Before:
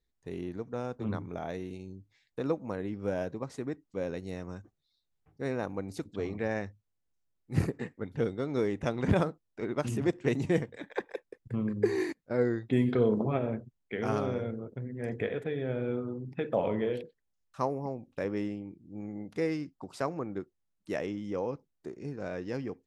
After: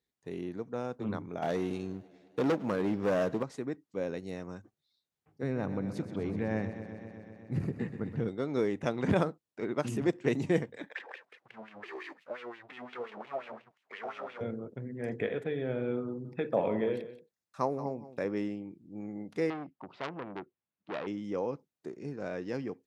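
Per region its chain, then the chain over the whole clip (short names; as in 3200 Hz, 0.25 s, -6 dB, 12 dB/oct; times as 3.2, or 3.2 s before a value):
1.42–3.43 sample leveller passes 2 + overloaded stage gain 24.5 dB + warbling echo 0.102 s, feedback 78%, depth 73 cents, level -23.5 dB
5.43–8.28 tone controls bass +11 dB, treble -5 dB + compressor 4:1, threshold -27 dBFS + warbling echo 0.126 s, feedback 79%, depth 52 cents, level -11.5 dB
10.95–14.41 power-law curve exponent 0.5 + compressor 1.5:1, threshold -37 dBFS + wah 5.7 Hz 650–2900 Hz, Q 3.2
16.07–18.33 notch 3000 Hz, Q 7.6 + echo 0.179 s -14 dB
19.5–21.07 LPF 3200 Hz 24 dB/oct + core saturation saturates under 2800 Hz
whole clip: HPF 130 Hz 12 dB/oct; high shelf 8800 Hz -3.5 dB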